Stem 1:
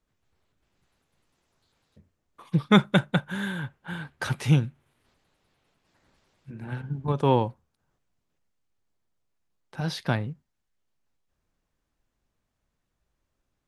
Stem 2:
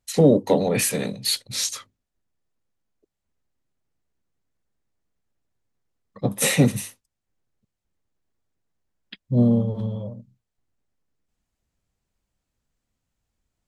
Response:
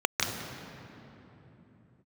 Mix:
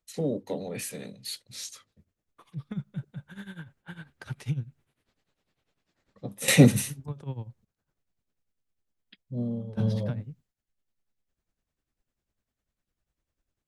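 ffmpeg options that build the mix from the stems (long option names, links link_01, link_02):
-filter_complex "[0:a]acrossover=split=160[link_01][link_02];[link_02]acompressor=threshold=-35dB:ratio=8[link_03];[link_01][link_03]amix=inputs=2:normalize=0,tremolo=f=10:d=0.84,volume=-3dB,asplit=2[link_04][link_05];[1:a]volume=1.5dB[link_06];[link_05]apad=whole_len=602957[link_07];[link_06][link_07]sidechaingate=range=-15dB:threshold=-59dB:ratio=16:detection=peak[link_08];[link_04][link_08]amix=inputs=2:normalize=0,equalizer=frequency=960:width_type=o:width=0.77:gain=-4"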